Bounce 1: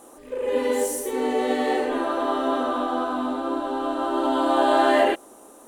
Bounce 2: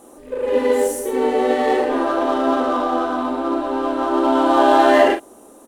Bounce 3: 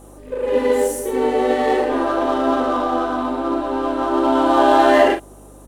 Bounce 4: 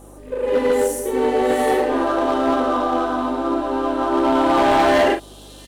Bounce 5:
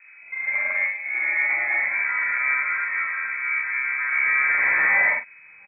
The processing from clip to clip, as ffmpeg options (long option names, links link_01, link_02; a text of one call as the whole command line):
ffmpeg -i in.wav -filter_complex "[0:a]asplit=2[link_01][link_02];[link_02]adynamicsmooth=sensitivity=4.5:basefreq=520,volume=-2dB[link_03];[link_01][link_03]amix=inputs=2:normalize=0,asplit=2[link_04][link_05];[link_05]adelay=42,volume=-8dB[link_06];[link_04][link_06]amix=inputs=2:normalize=0" out.wav
ffmpeg -i in.wav -af "aeval=exprs='val(0)+0.00631*(sin(2*PI*50*n/s)+sin(2*PI*2*50*n/s)/2+sin(2*PI*3*50*n/s)/3+sin(2*PI*4*50*n/s)/4+sin(2*PI*5*50*n/s)/5)':channel_layout=same" out.wav
ffmpeg -i in.wav -filter_complex "[0:a]acrossover=split=3500[link_01][link_02];[link_01]asoftclip=type=hard:threshold=-11.5dB[link_03];[link_02]aecho=1:1:702:0.398[link_04];[link_03][link_04]amix=inputs=2:normalize=0" out.wav
ffmpeg -i in.wav -filter_complex "[0:a]asplit=2[link_01][link_02];[link_02]adelay=45,volume=-2dB[link_03];[link_01][link_03]amix=inputs=2:normalize=0,lowpass=frequency=2200:width_type=q:width=0.5098,lowpass=frequency=2200:width_type=q:width=0.6013,lowpass=frequency=2200:width_type=q:width=0.9,lowpass=frequency=2200:width_type=q:width=2.563,afreqshift=-2600,volume=-7.5dB" out.wav